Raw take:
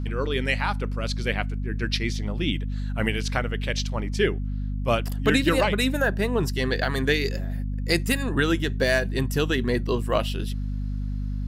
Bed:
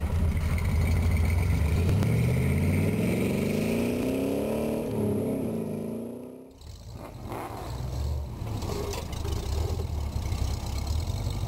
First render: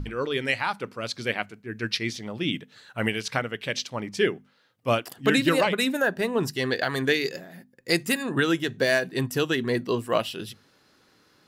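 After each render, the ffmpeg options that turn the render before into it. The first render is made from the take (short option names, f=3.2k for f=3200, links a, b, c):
-af "bandreject=f=50:t=h:w=6,bandreject=f=100:t=h:w=6,bandreject=f=150:t=h:w=6,bandreject=f=200:t=h:w=6,bandreject=f=250:t=h:w=6"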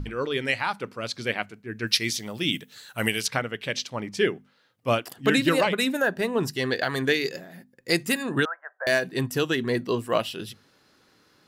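-filter_complex "[0:a]asettb=1/sr,asplit=3[a][b][c];[a]atrim=end=1.874[d];[b]atrim=start=1.87:end=3.27,asetpts=PTS-STARTPTS,afade=t=in:d=0.004:c=qsin,afade=t=out:st=1.396:d=0.004:c=qsin,aemphasis=mode=production:type=75fm[e];[c]atrim=start=3.266[f];[d][e]acrossfade=d=0.004:c1=hsin:c2=qsin[g];[g][f]acrossfade=d=0.004:c1=qsin:c2=hsin,asettb=1/sr,asplit=3[h][i][j];[h]atrim=end=8.454[k];[i]atrim=start=8.45:end=8.87,asetpts=PTS-STARTPTS,afade=t=in:d=0.004:c=qsin,afade=t=out:st=0.416:d=0.004:c=qsin,asuperpass=centerf=1000:order=12:qfactor=0.93[l];[j]atrim=start=8.866[m];[k][l]acrossfade=d=0.004:c1=hsin:c2=qsin[n];[n][m]acrossfade=d=0.004:c1=qsin:c2=hsin"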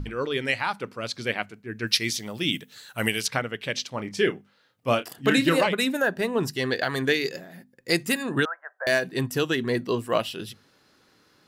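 -filter_complex "[0:a]asettb=1/sr,asplit=3[a][b][c];[a]atrim=end=3.914[d];[b]atrim=start=3.91:end=5.67,asetpts=PTS-STARTPTS,afade=t=in:d=0.004:c=qsin,afade=t=out:st=1.756:d=0.004:c=qsin,asplit=2[e][f];[f]adelay=30,volume=-11dB[g];[e][g]amix=inputs=2:normalize=0,atrim=end_sample=77616[h];[c]atrim=start=5.666[i];[d][h]acrossfade=d=0.004:c1=hsin:c2=qsin[j];[j][i]acrossfade=d=0.004:c1=qsin:c2=hsin"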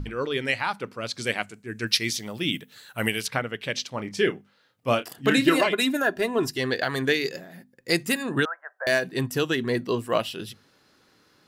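-filter_complex "[0:a]asettb=1/sr,asplit=3[a][b][c];[a]atrim=end=1.174[d];[b]atrim=start=1.17:end=1.85,asetpts=PTS-STARTPTS,afade=t=in:d=0.004:c=qsin,afade=t=out:st=0.676:d=0.004:c=qsin,equalizer=f=8.1k:t=o:w=1:g=13.5[e];[c]atrim=start=1.846[f];[d][e]acrossfade=d=0.004:c1=hsin:c2=qsin[g];[g][f]acrossfade=d=0.004:c1=qsin:c2=hsin,asettb=1/sr,asplit=3[h][i][j];[h]atrim=end=2.384[k];[i]atrim=start=2.38:end=3.47,asetpts=PTS-STARTPTS,afade=t=in:d=0.004:c=qsin,afade=t=out:st=1.086:d=0.004:c=qsin,equalizer=f=5.9k:t=o:w=1.1:g=-5[l];[j]atrim=start=3.466[m];[k][l]acrossfade=d=0.004:c1=hsin:c2=qsin[n];[n][m]acrossfade=d=0.004:c1=qsin:c2=hsin,asettb=1/sr,asplit=3[o][p][q];[o]atrim=end=5.474[r];[p]atrim=start=5.47:end=6.58,asetpts=PTS-STARTPTS,afade=t=in:d=0.004:c=qsin,afade=t=out:st=1.106:d=0.004:c=qsin,aecho=1:1:2.9:0.58,atrim=end_sample=48951[s];[q]atrim=start=6.576[t];[r][s]acrossfade=d=0.004:c1=hsin:c2=qsin[u];[u][t]acrossfade=d=0.004:c1=qsin:c2=hsin"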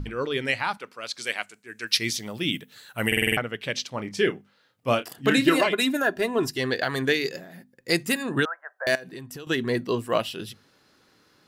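-filter_complex "[0:a]asettb=1/sr,asplit=3[a][b][c];[a]atrim=end=0.774[d];[b]atrim=start=0.77:end=1.95,asetpts=PTS-STARTPTS,afade=t=in:d=0.004:c=qsin,afade=t=out:st=1.176:d=0.004:c=qsin,highpass=f=960:p=1[e];[c]atrim=start=1.946[f];[d][e]acrossfade=d=0.004:c1=hsin:c2=qsin[g];[g][f]acrossfade=d=0.004:c1=qsin:c2=hsin,asettb=1/sr,asplit=3[h][i][j];[h]atrim=end=8.954[k];[i]atrim=start=8.95:end=9.47,asetpts=PTS-STARTPTS,afade=t=in:d=0.004:c=qsin,afade=t=out:st=0.516:d=0.004:c=qsin,acompressor=threshold=-35dB:ratio=12:attack=3.2:release=140:knee=1:detection=peak[l];[j]atrim=start=9.466[m];[k][l]acrossfade=d=0.004:c1=hsin:c2=qsin[n];[n][m]acrossfade=d=0.004:c1=qsin:c2=hsin,asplit=7[o][p][q][r][s][t][u];[o]atrim=end=3.122[v];[p]atrim=start=3.068:end=3.122[w];[q]atrim=start=3.068:end=3.122[x];[r]atrim=start=3.068:end=3.122[y];[s]atrim=start=3.068:end=3.122[z];[t]atrim=start=3.068:end=3.122[aa];[u]atrim=start=3.368[ab];[v][w]acrossfade=d=0.004:c1=hsin:c2=hsin[ac];[ac][x]acrossfade=d=0.004:c1=hsin:c2=hsin[ad];[ad][y]acrossfade=d=0.004:c1=hsin:c2=hsin[ae];[ae][z]acrossfade=d=0.004:c1=hsin:c2=hsin[af];[af][aa]acrossfade=d=0.004:c1=hsin:c2=hsin[ag];[ag][ab]acrossfade=d=0.004:c1=hsin:c2=hsin"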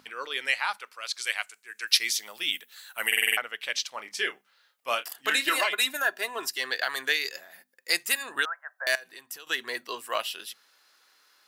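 -af "highpass=950,highshelf=f=9.6k:g=7.5"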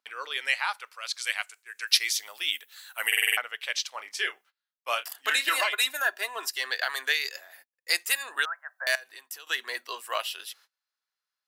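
-af "highpass=550,agate=range=-27dB:threshold=-54dB:ratio=16:detection=peak"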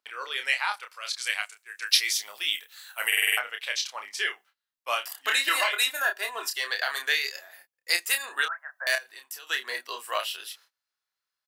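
-filter_complex "[0:a]asplit=2[a][b];[b]adelay=29,volume=-6dB[c];[a][c]amix=inputs=2:normalize=0"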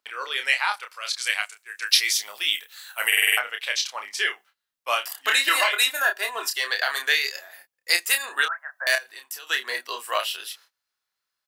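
-af "volume=4dB,alimiter=limit=-3dB:level=0:latency=1"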